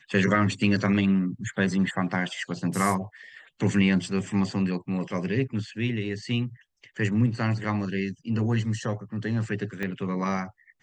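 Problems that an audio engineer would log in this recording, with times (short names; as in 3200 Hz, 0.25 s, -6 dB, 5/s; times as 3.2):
9.83 pop -18 dBFS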